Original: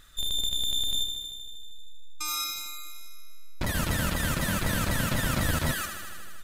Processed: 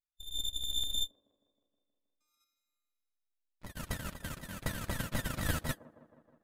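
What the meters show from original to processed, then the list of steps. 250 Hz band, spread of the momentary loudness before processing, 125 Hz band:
-10.5 dB, 15 LU, -10.0 dB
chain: gate -24 dBFS, range -50 dB; on a send: feedback echo behind a band-pass 158 ms, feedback 67%, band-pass 460 Hz, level -15 dB

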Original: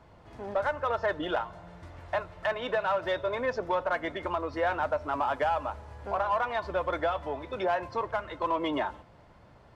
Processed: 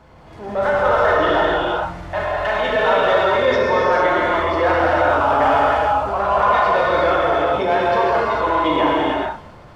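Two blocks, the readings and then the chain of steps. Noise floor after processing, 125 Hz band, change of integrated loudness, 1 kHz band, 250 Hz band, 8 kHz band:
-41 dBFS, +13.5 dB, +13.5 dB, +14.0 dB, +13.5 dB, no reading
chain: gated-style reverb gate 490 ms flat, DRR -6.5 dB; transient shaper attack -4 dB, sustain +2 dB; trim +7 dB

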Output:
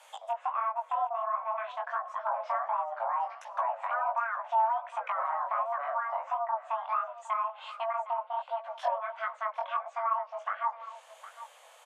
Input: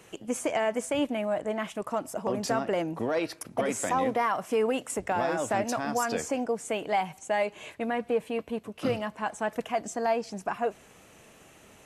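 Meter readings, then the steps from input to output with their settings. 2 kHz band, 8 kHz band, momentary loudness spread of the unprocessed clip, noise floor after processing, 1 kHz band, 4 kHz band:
-4.5 dB, under -20 dB, 6 LU, -56 dBFS, +2.5 dB, under -10 dB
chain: low-pass that closes with the level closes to 860 Hz, closed at -25.5 dBFS; frequency shift +450 Hz; low-pass that closes with the level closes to 2.5 kHz, closed at -26 dBFS; chorus 1.4 Hz, delay 16 ms, depth 6.8 ms; delay 761 ms -15 dB; trim +1 dB

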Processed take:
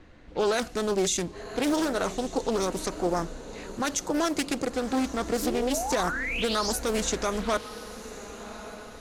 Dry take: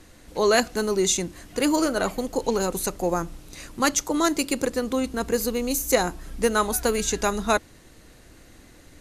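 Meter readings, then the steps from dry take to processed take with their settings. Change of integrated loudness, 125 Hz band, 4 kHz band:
-4.0 dB, -2.5 dB, -2.5 dB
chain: level-controlled noise filter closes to 2.7 kHz, open at -18 dBFS; painted sound rise, 5.42–6.73 s, 280–6100 Hz -30 dBFS; on a send: echo that smears into a reverb 1131 ms, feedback 44%, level -16 dB; on the sum: peak limiter -14.5 dBFS, peak gain reduction 8 dB; loudspeaker Doppler distortion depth 0.39 ms; trim -1.5 dB

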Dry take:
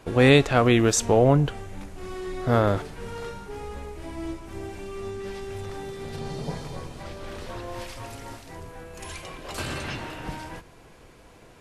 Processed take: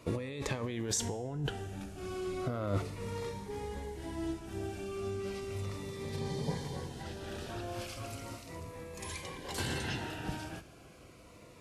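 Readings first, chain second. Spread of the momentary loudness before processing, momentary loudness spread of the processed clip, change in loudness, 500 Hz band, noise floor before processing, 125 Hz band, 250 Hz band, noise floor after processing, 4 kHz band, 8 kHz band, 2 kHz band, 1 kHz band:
21 LU, 10 LU, -14.0 dB, -13.5 dB, -51 dBFS, -11.0 dB, -12.5 dB, -55 dBFS, -9.5 dB, -8.0 dB, -13.0 dB, -13.0 dB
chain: high-pass 55 Hz; compressor with a negative ratio -26 dBFS, ratio -1; feedback comb 100 Hz, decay 0.8 s, harmonics all, mix 50%; Shepard-style phaser falling 0.35 Hz; trim -1.5 dB

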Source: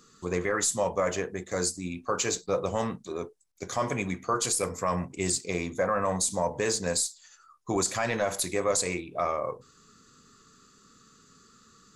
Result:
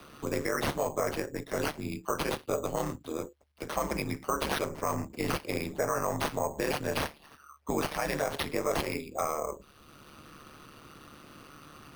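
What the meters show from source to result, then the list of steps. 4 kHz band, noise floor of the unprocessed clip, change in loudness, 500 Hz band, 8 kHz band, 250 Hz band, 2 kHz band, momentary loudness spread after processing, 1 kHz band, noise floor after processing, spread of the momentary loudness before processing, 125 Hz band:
-3.5 dB, -60 dBFS, -3.5 dB, -3.0 dB, -11.5 dB, -1.5 dB, -1.5 dB, 20 LU, -2.0 dB, -58 dBFS, 8 LU, -2.0 dB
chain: ring modulator 73 Hz; sample-and-hold 6×; three bands compressed up and down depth 40%

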